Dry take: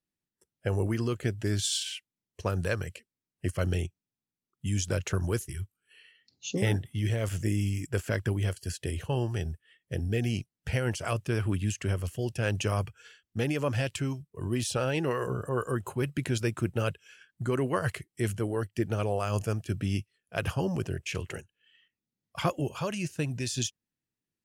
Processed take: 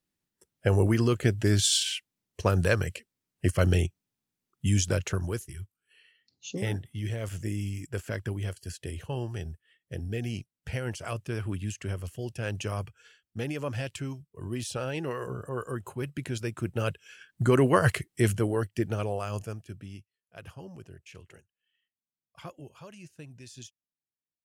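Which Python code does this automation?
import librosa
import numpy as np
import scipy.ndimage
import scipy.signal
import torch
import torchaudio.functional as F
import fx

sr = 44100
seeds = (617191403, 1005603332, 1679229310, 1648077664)

y = fx.gain(x, sr, db=fx.line((4.71, 5.5), (5.41, -4.0), (16.51, -4.0), (17.42, 7.0), (18.07, 7.0), (19.29, -3.5), (19.98, -15.0)))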